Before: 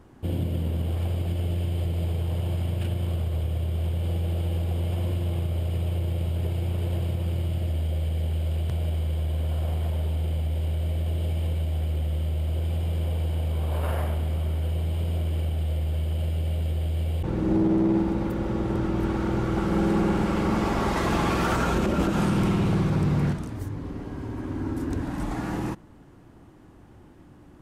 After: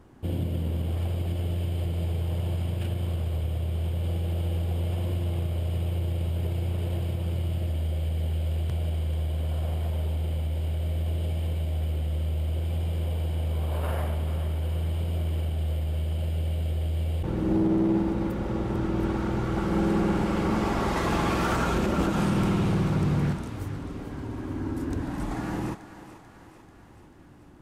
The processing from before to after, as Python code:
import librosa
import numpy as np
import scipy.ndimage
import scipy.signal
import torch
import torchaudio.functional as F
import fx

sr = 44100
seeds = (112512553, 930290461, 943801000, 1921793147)

y = fx.echo_thinned(x, sr, ms=439, feedback_pct=61, hz=420.0, wet_db=-11.5)
y = F.gain(torch.from_numpy(y), -1.5).numpy()